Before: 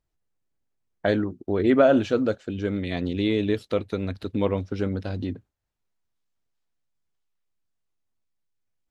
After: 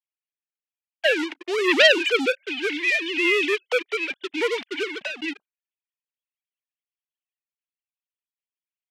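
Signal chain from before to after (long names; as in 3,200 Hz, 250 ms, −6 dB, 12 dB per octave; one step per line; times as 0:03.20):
three sine waves on the formant tracks
leveller curve on the samples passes 3
resonant band-pass 2,100 Hz, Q 0.52
high shelf with overshoot 1,800 Hz +11.5 dB, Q 1.5
level −1 dB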